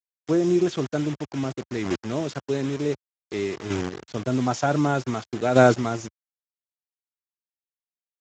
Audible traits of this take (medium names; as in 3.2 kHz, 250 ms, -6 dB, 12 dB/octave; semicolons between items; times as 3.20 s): a quantiser's noise floor 6-bit, dither none; chopped level 0.54 Hz, depth 60%, duty 10%; Speex